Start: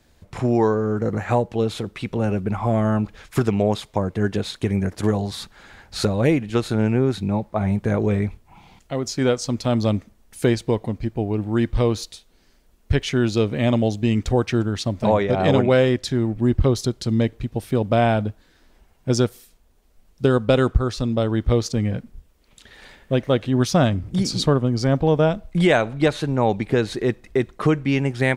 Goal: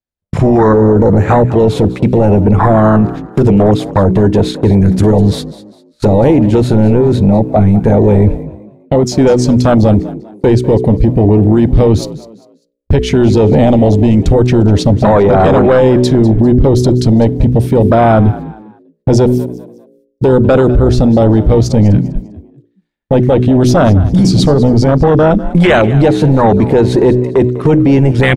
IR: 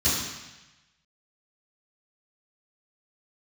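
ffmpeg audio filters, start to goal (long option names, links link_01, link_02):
-filter_complex "[0:a]afwtdn=0.0891,agate=range=-42dB:threshold=-40dB:ratio=16:detection=peak,bandreject=frequency=62.14:width_type=h:width=4,bandreject=frequency=124.28:width_type=h:width=4,bandreject=frequency=186.42:width_type=h:width=4,bandreject=frequency=248.56:width_type=h:width=4,bandreject=frequency=310.7:width_type=h:width=4,bandreject=frequency=372.84:width_type=h:width=4,bandreject=frequency=434.98:width_type=h:width=4,acompressor=threshold=-24dB:ratio=2,apsyclip=28.5dB,asplit=2[link_01][link_02];[link_02]asplit=3[link_03][link_04][link_05];[link_03]adelay=199,afreqshift=54,volume=-17dB[link_06];[link_04]adelay=398,afreqshift=108,volume=-27.2dB[link_07];[link_05]adelay=597,afreqshift=162,volume=-37.3dB[link_08];[link_06][link_07][link_08]amix=inputs=3:normalize=0[link_09];[link_01][link_09]amix=inputs=2:normalize=0,volume=-3.5dB"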